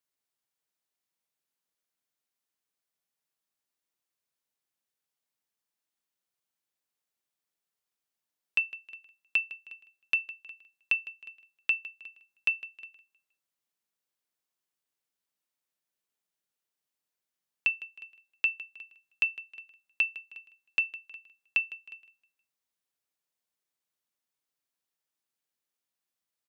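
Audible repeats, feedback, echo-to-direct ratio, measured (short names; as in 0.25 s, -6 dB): 3, 37%, -16.0 dB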